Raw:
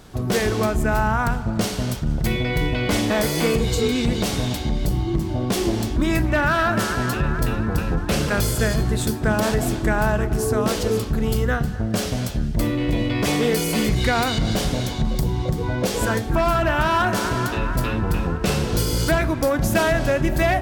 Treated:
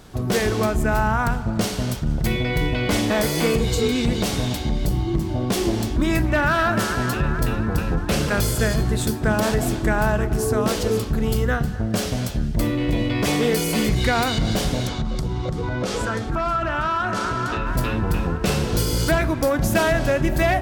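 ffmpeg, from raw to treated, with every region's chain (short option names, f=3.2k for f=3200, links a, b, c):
-filter_complex "[0:a]asettb=1/sr,asplit=3[a][b][c];[a]atrim=end=14.874[d];[b]atrim=start=14.87:end=17.67,asetpts=PTS-STARTPTS,afade=t=in:d=0.004:c=qsin,afade=t=out:st=2.796:d=0.004:c=qsin,lowpass=7.6k,equalizer=f=1.3k:w=7.7:g=11,acompressor=threshold=-20dB:ratio=4:attack=3.2:release=140:knee=1:detection=peak[e];[c]atrim=start=17.666[f];[d][e]acrossfade=d=0.004:c1=hsin:c2=qsin[g];[g][f]acrossfade=d=0.004:c1=qsin:c2=hsin"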